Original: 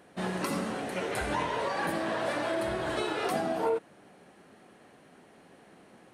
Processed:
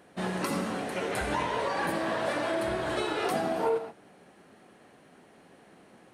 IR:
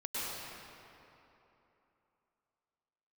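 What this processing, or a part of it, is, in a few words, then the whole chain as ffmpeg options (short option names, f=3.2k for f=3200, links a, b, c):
keyed gated reverb: -filter_complex "[0:a]asplit=3[a][b][c];[1:a]atrim=start_sample=2205[d];[b][d]afir=irnorm=-1:irlink=0[e];[c]apad=whole_len=270678[f];[e][f]sidechaingate=range=-33dB:threshold=-44dB:ratio=16:detection=peak,volume=-15dB[g];[a][g]amix=inputs=2:normalize=0"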